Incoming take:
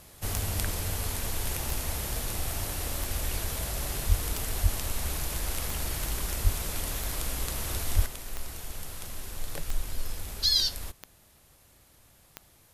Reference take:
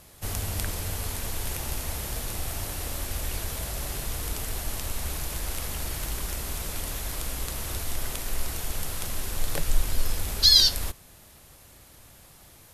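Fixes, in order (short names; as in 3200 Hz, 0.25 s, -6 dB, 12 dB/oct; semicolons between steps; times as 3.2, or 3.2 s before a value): de-click; de-plosive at 4.08/4.62/6.43/7.95; gain correction +7.5 dB, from 8.06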